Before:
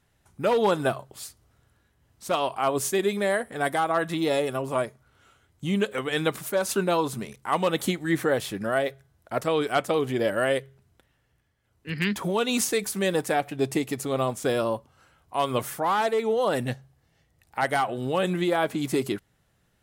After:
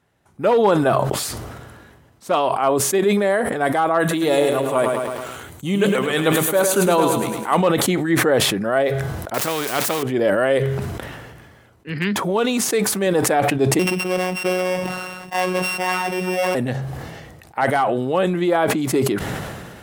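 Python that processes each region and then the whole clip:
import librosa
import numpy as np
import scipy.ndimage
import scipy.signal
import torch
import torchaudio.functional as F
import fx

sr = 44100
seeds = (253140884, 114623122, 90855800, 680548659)

y = fx.chain(x, sr, fx.high_shelf(hz=4900.0, db=11.5),
    fx.notch(hz=5200.0, q=5.6),
    fx.echo_crushed(ms=107, feedback_pct=55, bits=8, wet_db=-7.0), at=(4.0, 7.57))
y = fx.chain(y, sr, fx.crossing_spikes(level_db=-25.0),
    fx.spectral_comp(ratio=2.0), at=(9.34, 10.03))
y = fx.chain(y, sr, fx.law_mismatch(coded='A'),
    fx.highpass(hz=61.0, slope=12), at=(12.36, 13.07))
y = fx.chain(y, sr, fx.sample_sort(block=16),
    fx.robotise(hz=183.0),
    fx.band_squash(depth_pct=70), at=(13.79, 16.55))
y = fx.highpass(y, sr, hz=210.0, slope=6)
y = fx.high_shelf(y, sr, hz=2100.0, db=-10.0)
y = fx.sustainer(y, sr, db_per_s=32.0)
y = y * 10.0 ** (7.5 / 20.0)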